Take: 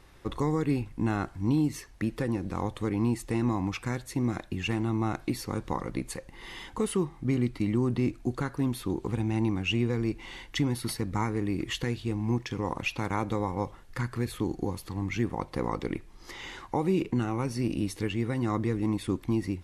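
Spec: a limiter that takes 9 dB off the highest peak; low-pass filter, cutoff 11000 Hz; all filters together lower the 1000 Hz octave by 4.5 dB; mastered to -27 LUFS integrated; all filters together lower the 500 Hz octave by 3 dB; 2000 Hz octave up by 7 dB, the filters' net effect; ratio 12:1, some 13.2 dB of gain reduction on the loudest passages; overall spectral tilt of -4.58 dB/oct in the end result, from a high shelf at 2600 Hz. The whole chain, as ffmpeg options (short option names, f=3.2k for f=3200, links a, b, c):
-af "lowpass=11k,equalizer=f=500:t=o:g=-3.5,equalizer=f=1k:t=o:g=-7.5,equalizer=f=2k:t=o:g=6,highshelf=f=2.6k:g=9,acompressor=threshold=-32dB:ratio=12,volume=11.5dB,alimiter=limit=-16dB:level=0:latency=1"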